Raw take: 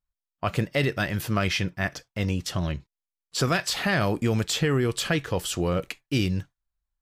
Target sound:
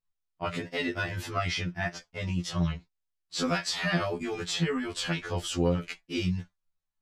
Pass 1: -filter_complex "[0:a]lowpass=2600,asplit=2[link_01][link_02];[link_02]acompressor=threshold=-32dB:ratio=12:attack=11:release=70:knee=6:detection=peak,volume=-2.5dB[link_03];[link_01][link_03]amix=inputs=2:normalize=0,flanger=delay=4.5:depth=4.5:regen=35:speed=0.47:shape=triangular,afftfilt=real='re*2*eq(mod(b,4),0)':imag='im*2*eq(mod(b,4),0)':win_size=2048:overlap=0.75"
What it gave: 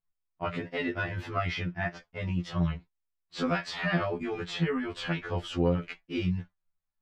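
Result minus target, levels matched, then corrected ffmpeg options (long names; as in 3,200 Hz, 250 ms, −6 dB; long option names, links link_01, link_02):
8,000 Hz band −13.0 dB
-filter_complex "[0:a]lowpass=7400,asplit=2[link_01][link_02];[link_02]acompressor=threshold=-32dB:ratio=12:attack=11:release=70:knee=6:detection=peak,volume=-2.5dB[link_03];[link_01][link_03]amix=inputs=2:normalize=0,flanger=delay=4.5:depth=4.5:regen=35:speed=0.47:shape=triangular,afftfilt=real='re*2*eq(mod(b,4),0)':imag='im*2*eq(mod(b,4),0)':win_size=2048:overlap=0.75"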